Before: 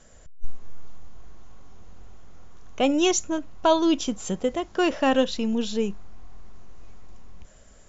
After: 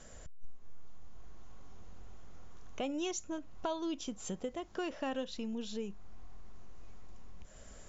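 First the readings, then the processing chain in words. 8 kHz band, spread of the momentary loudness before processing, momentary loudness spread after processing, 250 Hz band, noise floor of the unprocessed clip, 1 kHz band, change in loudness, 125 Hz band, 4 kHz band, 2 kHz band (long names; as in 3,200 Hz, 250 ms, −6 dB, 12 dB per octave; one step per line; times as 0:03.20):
can't be measured, 8 LU, 21 LU, −15.0 dB, −51 dBFS, −16.0 dB, −15.5 dB, −11.5 dB, −15.5 dB, −15.5 dB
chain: downward compressor 2.5 to 1, threshold −43 dBFS, peak gain reduction 18.5 dB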